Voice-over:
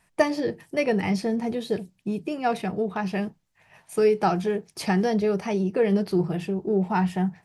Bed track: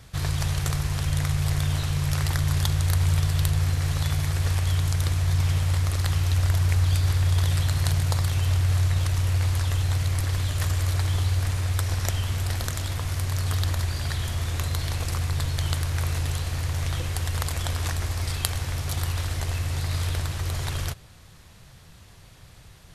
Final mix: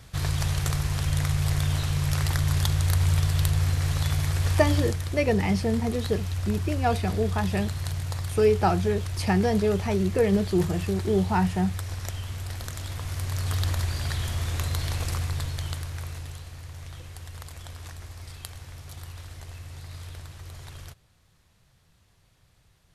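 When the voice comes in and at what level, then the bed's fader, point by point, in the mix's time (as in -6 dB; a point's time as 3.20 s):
4.40 s, -0.5 dB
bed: 4.79 s -0.5 dB
5.02 s -7.5 dB
12.51 s -7.5 dB
13.67 s -1 dB
15.09 s -1 dB
16.55 s -13.5 dB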